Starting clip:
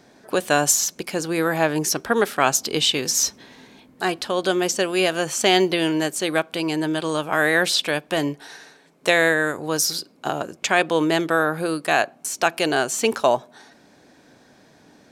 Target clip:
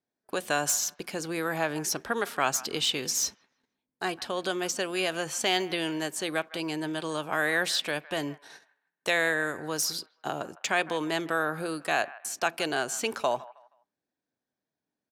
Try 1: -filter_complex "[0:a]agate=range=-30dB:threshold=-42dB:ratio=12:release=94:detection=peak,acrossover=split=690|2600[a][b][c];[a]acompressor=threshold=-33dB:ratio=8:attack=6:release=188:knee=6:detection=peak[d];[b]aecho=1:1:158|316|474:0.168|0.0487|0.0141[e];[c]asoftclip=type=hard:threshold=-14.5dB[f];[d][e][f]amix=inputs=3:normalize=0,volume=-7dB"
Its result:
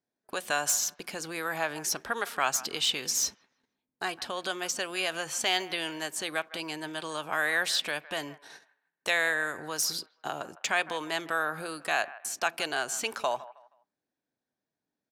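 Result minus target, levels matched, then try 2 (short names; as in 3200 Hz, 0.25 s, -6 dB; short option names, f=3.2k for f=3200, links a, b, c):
compressor: peak gain reduction +9.5 dB
-filter_complex "[0:a]agate=range=-30dB:threshold=-42dB:ratio=12:release=94:detection=peak,acrossover=split=690|2600[a][b][c];[a]acompressor=threshold=-22dB:ratio=8:attack=6:release=188:knee=6:detection=peak[d];[b]aecho=1:1:158|316|474:0.168|0.0487|0.0141[e];[c]asoftclip=type=hard:threshold=-14.5dB[f];[d][e][f]amix=inputs=3:normalize=0,volume=-7dB"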